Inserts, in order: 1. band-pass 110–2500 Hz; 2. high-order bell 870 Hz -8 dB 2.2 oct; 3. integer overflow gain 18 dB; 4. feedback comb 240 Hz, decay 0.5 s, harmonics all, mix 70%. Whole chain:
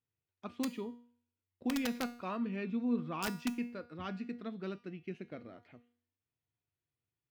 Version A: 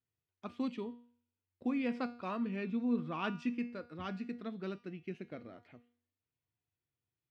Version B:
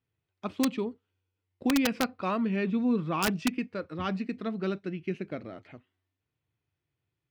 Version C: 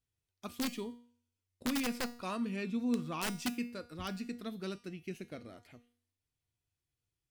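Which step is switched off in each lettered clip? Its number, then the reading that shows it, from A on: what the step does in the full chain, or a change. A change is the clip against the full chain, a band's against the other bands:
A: 3, distortion -12 dB; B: 4, crest factor change -3.5 dB; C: 1, 8 kHz band +5.0 dB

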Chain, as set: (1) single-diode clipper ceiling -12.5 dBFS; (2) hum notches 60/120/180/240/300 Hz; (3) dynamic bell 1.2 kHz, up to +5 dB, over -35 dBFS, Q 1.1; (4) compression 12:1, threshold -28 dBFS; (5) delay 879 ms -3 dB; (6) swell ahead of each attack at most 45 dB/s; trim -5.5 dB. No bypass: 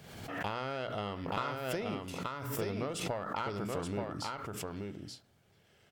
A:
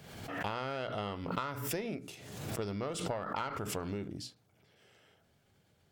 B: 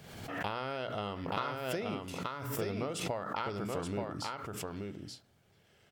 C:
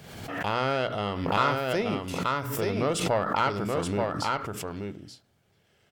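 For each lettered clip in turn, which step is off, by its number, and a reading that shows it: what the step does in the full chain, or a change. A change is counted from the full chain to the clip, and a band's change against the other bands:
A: 5, crest factor change +1.5 dB; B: 1, crest factor change +1.5 dB; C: 4, mean gain reduction 6.5 dB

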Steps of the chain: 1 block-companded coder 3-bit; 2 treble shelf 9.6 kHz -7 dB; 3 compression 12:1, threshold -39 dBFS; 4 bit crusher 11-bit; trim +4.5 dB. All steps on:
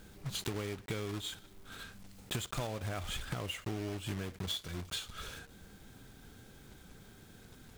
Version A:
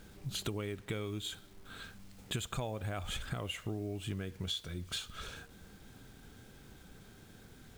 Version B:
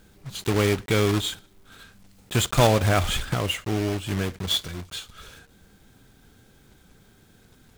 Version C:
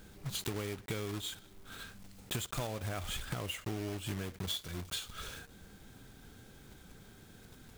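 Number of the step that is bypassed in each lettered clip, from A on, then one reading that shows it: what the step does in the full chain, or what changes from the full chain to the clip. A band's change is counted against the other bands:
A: 1, distortion -10 dB; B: 3, mean gain reduction 8.5 dB; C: 2, 8 kHz band +2.0 dB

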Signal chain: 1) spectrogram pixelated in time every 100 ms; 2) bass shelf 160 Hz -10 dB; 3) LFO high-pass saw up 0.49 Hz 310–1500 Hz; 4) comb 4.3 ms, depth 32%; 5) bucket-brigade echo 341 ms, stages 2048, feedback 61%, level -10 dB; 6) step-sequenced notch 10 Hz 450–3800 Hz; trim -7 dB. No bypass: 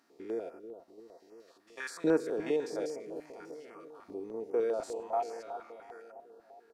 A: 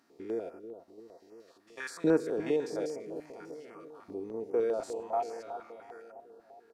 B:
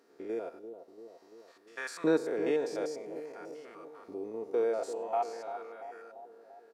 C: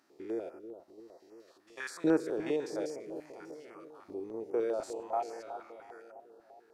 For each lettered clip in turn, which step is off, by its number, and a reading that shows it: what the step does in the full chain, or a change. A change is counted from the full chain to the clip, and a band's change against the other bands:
2, 125 Hz band +4.5 dB; 6, 125 Hz band -1.5 dB; 4, 250 Hz band +2.0 dB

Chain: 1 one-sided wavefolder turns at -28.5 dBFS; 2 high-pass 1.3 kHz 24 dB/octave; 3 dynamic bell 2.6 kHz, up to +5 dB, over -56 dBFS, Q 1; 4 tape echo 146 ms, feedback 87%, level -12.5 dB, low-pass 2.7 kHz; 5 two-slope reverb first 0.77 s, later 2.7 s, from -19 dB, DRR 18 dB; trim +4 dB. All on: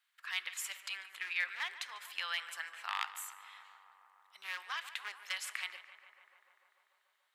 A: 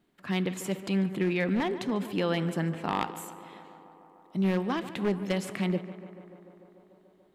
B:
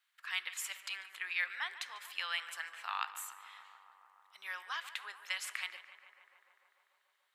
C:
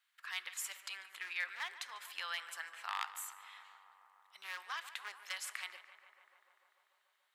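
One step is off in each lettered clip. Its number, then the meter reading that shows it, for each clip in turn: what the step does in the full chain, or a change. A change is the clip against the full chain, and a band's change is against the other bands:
2, 500 Hz band +32.0 dB; 1, distortion -17 dB; 3, 4 kHz band -3.0 dB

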